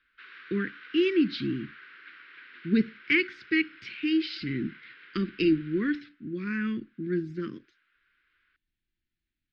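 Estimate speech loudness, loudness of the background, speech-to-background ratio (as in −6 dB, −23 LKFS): −29.0 LKFS, −49.0 LKFS, 20.0 dB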